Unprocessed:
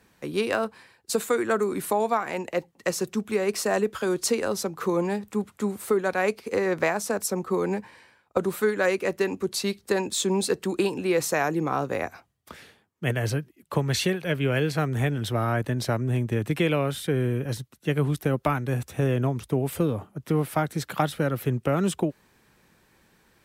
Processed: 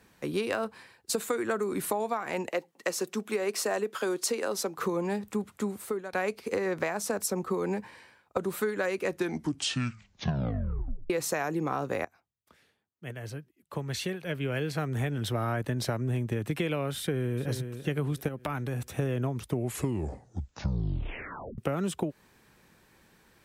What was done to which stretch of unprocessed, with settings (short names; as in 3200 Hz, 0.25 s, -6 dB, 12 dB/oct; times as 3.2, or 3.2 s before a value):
2.49–4.78 HPF 270 Hz
5.55–6.13 fade out, to -19.5 dB
9.05 tape stop 2.05 s
12.05–15.58 fade in quadratic, from -18.5 dB
16.98–17.49 echo throw 0.39 s, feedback 40%, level -13 dB
18.28–18.85 compressor 4:1, threshold -29 dBFS
19.43 tape stop 2.15 s
whole clip: compressor, threshold -26 dBFS